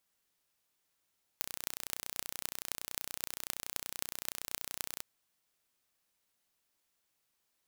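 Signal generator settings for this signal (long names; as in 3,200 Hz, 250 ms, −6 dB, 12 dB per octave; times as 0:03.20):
impulse train 30.6 per second, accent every 8, −6 dBFS 3.60 s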